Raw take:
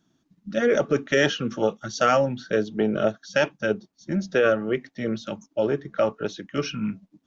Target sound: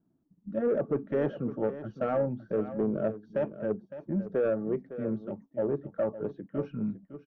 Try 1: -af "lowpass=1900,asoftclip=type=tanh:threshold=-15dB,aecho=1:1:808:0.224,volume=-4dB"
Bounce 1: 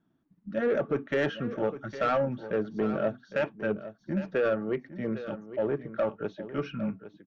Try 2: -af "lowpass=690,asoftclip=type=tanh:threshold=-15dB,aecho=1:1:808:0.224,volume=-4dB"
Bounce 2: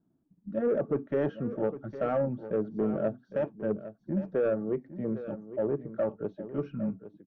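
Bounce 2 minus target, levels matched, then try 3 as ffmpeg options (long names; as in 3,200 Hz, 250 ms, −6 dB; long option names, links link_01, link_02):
echo 249 ms late
-af "lowpass=690,asoftclip=type=tanh:threshold=-15dB,aecho=1:1:559:0.224,volume=-4dB"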